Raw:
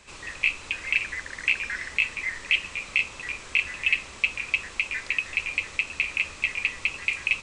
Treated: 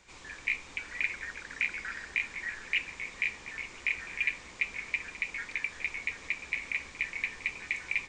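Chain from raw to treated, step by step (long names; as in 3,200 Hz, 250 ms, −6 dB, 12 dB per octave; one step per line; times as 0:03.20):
wrong playback speed 48 kHz file played as 44.1 kHz
echo through a band-pass that steps 146 ms, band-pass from 220 Hz, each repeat 0.7 octaves, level −1 dB
level −7.5 dB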